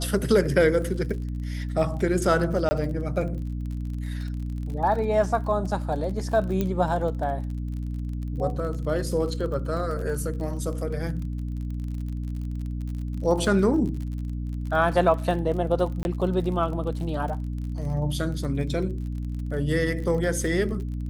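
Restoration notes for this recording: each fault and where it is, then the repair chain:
surface crackle 40 per second −34 dBFS
mains hum 60 Hz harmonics 5 −30 dBFS
0:02.69–0:02.71: drop-out 20 ms
0:06.61: click −13 dBFS
0:16.03–0:16.05: drop-out 21 ms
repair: click removal
hum removal 60 Hz, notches 5
repair the gap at 0:02.69, 20 ms
repair the gap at 0:16.03, 21 ms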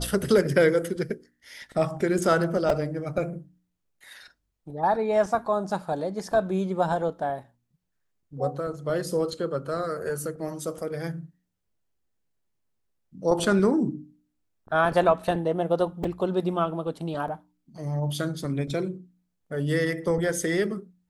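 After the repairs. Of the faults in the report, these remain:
none of them is left

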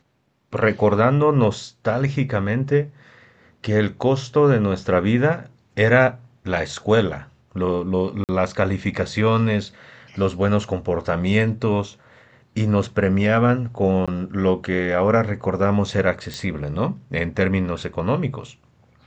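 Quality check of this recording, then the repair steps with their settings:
0:08.24–0:08.29: drop-out 48 ms
0:14.06–0:14.08: drop-out 16 ms
0:16.34: click −16 dBFS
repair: click removal
repair the gap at 0:08.24, 48 ms
repair the gap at 0:14.06, 16 ms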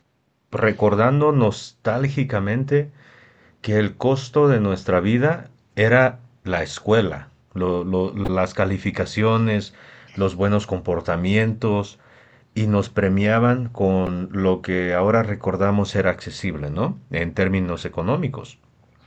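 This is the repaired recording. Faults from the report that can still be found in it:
none of them is left

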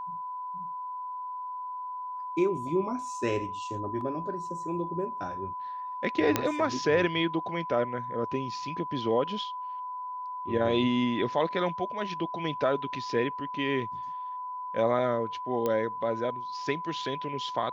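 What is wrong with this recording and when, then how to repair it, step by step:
whistle 1,000 Hz −34 dBFS
0:04.01: drop-out 2.1 ms
0:06.36: click −8 dBFS
0:15.66: click −16 dBFS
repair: click removal
notch filter 1,000 Hz, Q 30
repair the gap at 0:04.01, 2.1 ms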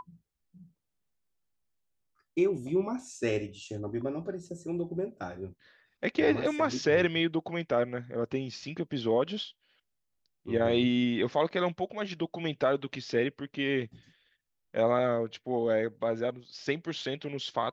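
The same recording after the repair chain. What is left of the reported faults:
none of them is left

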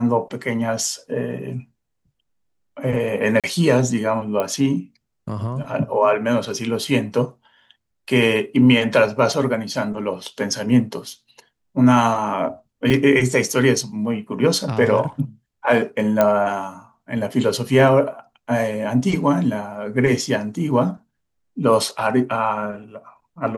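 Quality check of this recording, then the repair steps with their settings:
0:03.40–0:03.44: drop-out 37 ms
0:04.40: click −10 dBFS
0:12.90: drop-out 3.6 ms
0:16.21: click −4 dBFS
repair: click removal
repair the gap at 0:03.40, 37 ms
repair the gap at 0:12.90, 3.6 ms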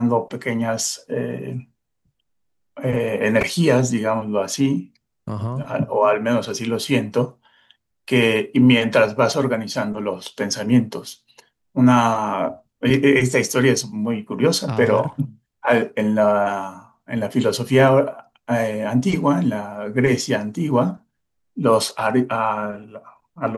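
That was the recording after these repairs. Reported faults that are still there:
none of them is left

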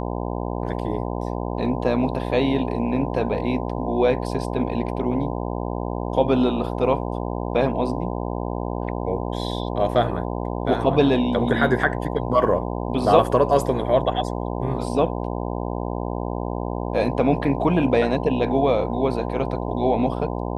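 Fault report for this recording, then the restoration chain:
mains buzz 60 Hz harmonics 17 −27 dBFS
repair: hum removal 60 Hz, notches 17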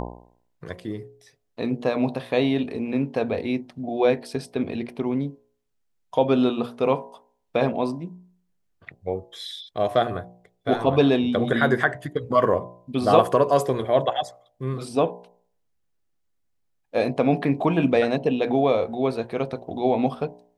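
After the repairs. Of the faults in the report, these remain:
none of them is left

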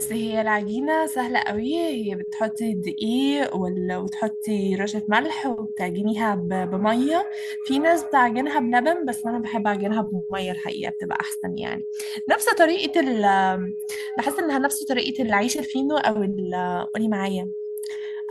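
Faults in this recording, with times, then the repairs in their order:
whistle 420 Hz −28 dBFS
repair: notch filter 420 Hz, Q 30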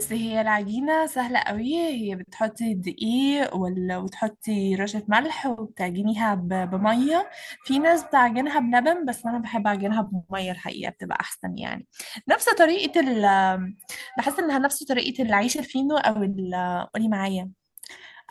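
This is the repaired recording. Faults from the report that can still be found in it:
none of them is left

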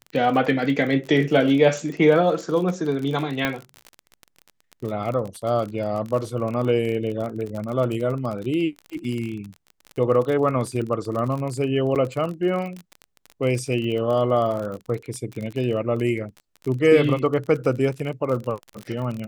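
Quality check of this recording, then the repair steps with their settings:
surface crackle 35 per second −28 dBFS
0:03.45: click −8 dBFS
0:11.95–0:11.96: drop-out 8.2 ms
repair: click removal
repair the gap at 0:11.95, 8.2 ms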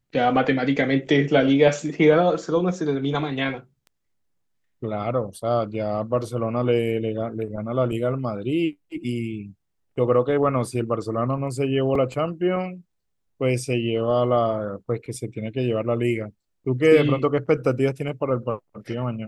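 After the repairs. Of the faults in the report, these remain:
none of them is left

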